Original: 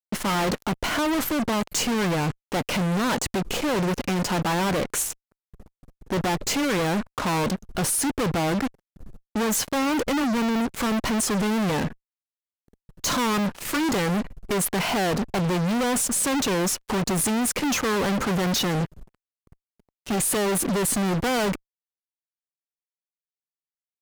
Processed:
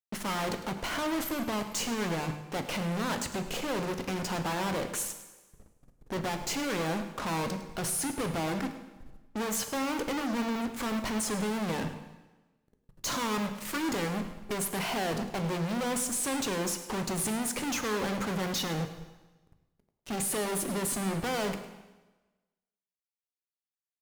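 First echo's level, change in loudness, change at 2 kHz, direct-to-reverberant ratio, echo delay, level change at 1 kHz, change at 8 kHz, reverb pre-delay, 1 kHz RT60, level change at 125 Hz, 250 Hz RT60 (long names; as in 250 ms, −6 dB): −15.0 dB, −7.5 dB, −7.5 dB, 7.0 dB, 105 ms, −7.0 dB, −7.5 dB, 4 ms, 1.2 s, −8.5 dB, 1.2 s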